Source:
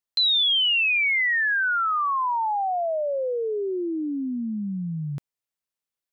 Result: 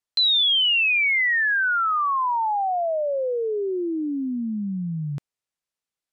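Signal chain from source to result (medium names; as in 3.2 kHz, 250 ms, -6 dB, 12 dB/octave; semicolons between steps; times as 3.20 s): low-pass 10 kHz; trim +1.5 dB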